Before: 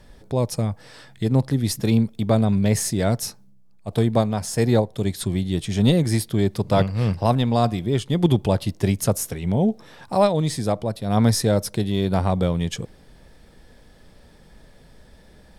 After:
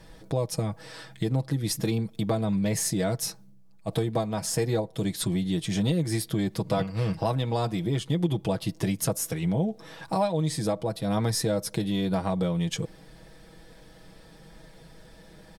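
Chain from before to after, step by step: bass shelf 63 Hz -6.5 dB; comb 6.2 ms, depth 68%; compression 3:1, threshold -25 dBFS, peak gain reduction 12.5 dB

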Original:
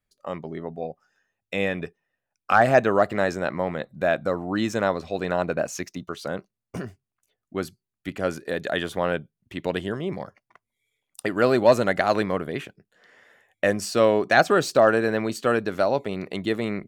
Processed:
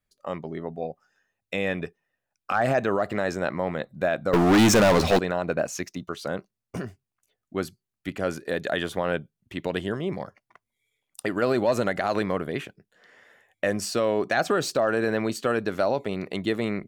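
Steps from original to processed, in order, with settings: peak limiter -13.5 dBFS, peak gain reduction 7.5 dB; 4.33–5.19 s: waveshaping leveller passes 5

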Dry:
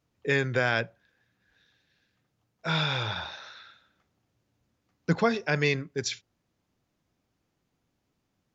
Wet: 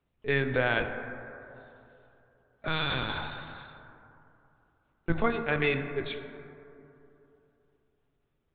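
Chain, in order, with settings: LPC vocoder at 8 kHz pitch kept; plate-style reverb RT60 3 s, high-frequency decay 0.3×, DRR 7 dB; trim -1.5 dB

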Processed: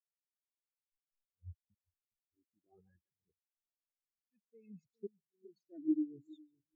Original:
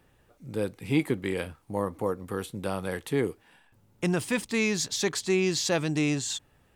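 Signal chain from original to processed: time-frequency box 2.82–3.08 s, 370–760 Hz -15 dB; reverse; compression 20:1, threshold -36 dBFS, peak gain reduction 18 dB; reverse; slow attack 540 ms; phaser 0.6 Hz, delay 3.6 ms, feedback 60%; on a send: two-band feedback delay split 500 Hz, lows 411 ms, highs 142 ms, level -6 dB; on the sum: hysteresis with a dead band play -39 dBFS; spectral contrast expander 4:1; trim +2 dB

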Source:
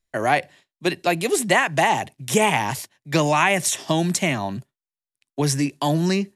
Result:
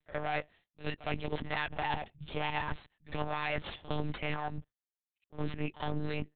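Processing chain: tracing distortion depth 0.19 ms; reverb removal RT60 1.8 s; reverse; compression, threshold -27 dBFS, peak gain reduction 13.5 dB; reverse; one-sided clip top -37.5 dBFS; on a send: reverse echo 60 ms -16 dB; on the sum: monotone LPC vocoder at 8 kHz 150 Hz; trim -1 dB

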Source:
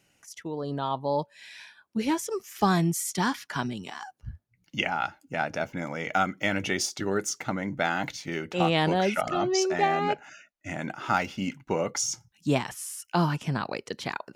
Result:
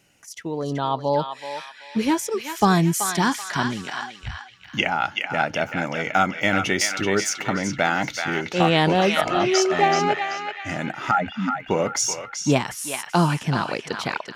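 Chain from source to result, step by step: 11.11–11.58 s: spectral contrast enhancement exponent 3.6; band-passed feedback delay 381 ms, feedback 50%, band-pass 2.4 kHz, level -3 dB; trim +5.5 dB

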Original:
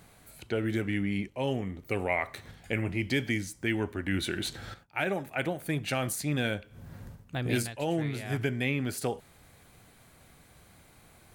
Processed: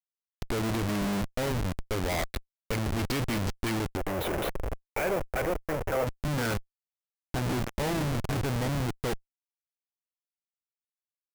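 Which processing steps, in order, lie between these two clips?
low-pass sweep 5.1 kHz -> 1.3 kHz, 3.43–6.35 s; Schmitt trigger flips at -33 dBFS; 3.97–6.07 s: ten-band graphic EQ 125 Hz -6 dB, 250 Hz -7 dB, 500 Hz +8 dB, 4 kHz -10 dB, 8 kHz -5 dB; trim +4 dB

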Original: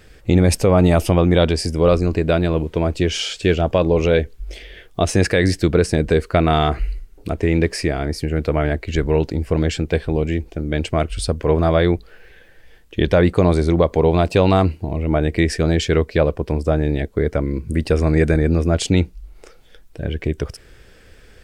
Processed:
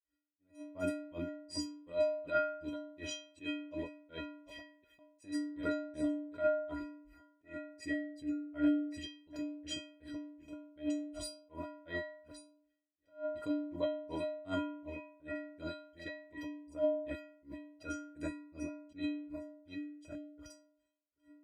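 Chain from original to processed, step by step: chunks repeated in reverse 692 ms, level -12.5 dB; high-pass 50 Hz 24 dB/octave; gate with hold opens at -35 dBFS; granulator 201 ms, grains 2.7 per s, pitch spread up and down by 0 st; vibrato 0.46 Hz 30 cents; inharmonic resonator 290 Hz, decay 0.85 s, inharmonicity 0.03; attacks held to a fixed rise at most 220 dB/s; trim +8.5 dB

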